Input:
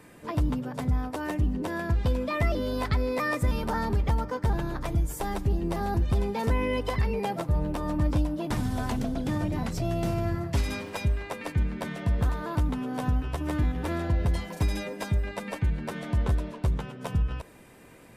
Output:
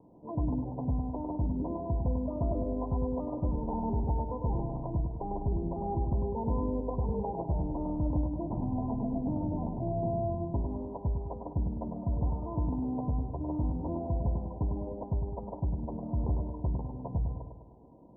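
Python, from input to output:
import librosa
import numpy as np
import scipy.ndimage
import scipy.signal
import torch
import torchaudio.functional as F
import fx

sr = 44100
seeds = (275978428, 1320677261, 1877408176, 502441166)

y = scipy.signal.sosfilt(scipy.signal.cheby1(6, 3, 1000.0, 'lowpass', fs=sr, output='sos'), x)
y = fx.echo_feedback(y, sr, ms=102, feedback_pct=52, wet_db=-5.5)
y = y * librosa.db_to_amplitude(-3.5)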